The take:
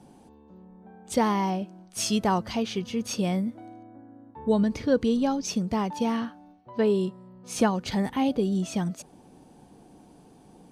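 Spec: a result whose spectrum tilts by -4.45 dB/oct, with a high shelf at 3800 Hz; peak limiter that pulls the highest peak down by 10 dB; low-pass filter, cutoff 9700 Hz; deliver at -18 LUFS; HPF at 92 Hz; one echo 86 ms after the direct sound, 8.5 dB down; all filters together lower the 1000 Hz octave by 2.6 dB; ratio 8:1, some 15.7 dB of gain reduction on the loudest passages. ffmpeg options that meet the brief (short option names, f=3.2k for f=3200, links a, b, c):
-af "highpass=92,lowpass=9.7k,equalizer=f=1k:t=o:g=-3.5,highshelf=f=3.8k:g=3.5,acompressor=threshold=-34dB:ratio=8,alimiter=level_in=8.5dB:limit=-24dB:level=0:latency=1,volume=-8.5dB,aecho=1:1:86:0.376,volume=23.5dB"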